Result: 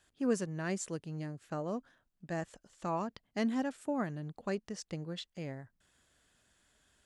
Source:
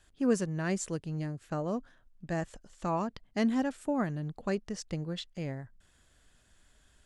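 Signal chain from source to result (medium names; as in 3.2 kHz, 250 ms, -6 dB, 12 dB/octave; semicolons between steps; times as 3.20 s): high-pass 140 Hz 6 dB/octave; trim -3 dB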